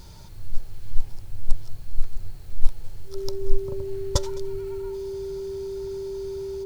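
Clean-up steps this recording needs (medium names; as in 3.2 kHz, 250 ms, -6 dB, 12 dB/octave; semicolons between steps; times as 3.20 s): band-stop 390 Hz, Q 30; inverse comb 210 ms -22.5 dB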